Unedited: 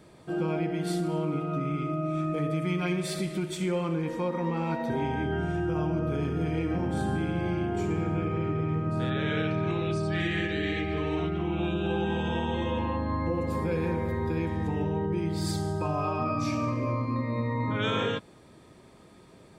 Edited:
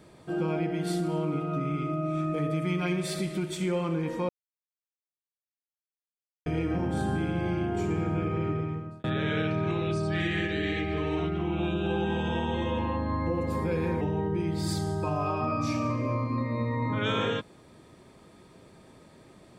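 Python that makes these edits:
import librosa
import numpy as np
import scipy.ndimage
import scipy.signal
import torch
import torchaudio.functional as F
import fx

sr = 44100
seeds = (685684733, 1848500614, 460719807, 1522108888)

y = fx.edit(x, sr, fx.silence(start_s=4.29, length_s=2.17),
    fx.fade_out_span(start_s=8.51, length_s=0.53),
    fx.cut(start_s=14.01, length_s=0.78), tone=tone)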